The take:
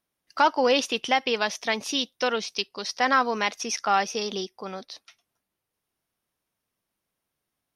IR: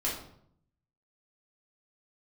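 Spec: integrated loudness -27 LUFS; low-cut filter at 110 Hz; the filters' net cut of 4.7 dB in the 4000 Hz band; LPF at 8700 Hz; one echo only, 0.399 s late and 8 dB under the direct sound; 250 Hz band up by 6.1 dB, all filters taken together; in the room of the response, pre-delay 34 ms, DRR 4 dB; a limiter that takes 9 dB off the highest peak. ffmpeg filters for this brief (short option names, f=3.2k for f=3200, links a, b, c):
-filter_complex "[0:a]highpass=110,lowpass=8.7k,equalizer=f=250:t=o:g=7,equalizer=f=4k:t=o:g=-6.5,alimiter=limit=-17dB:level=0:latency=1,aecho=1:1:399:0.398,asplit=2[a][b];[1:a]atrim=start_sample=2205,adelay=34[c];[b][c]afir=irnorm=-1:irlink=0,volume=-10dB[d];[a][d]amix=inputs=2:normalize=0,volume=-0.5dB"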